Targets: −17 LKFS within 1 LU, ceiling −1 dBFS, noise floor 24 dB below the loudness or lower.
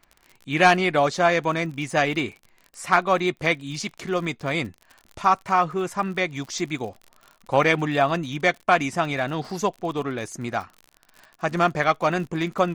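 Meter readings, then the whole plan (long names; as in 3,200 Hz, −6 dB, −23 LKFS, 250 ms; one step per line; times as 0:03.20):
crackle rate 53 per second; integrated loudness −23.5 LKFS; sample peak −4.5 dBFS; target loudness −17.0 LKFS
→ click removal
level +6.5 dB
brickwall limiter −1 dBFS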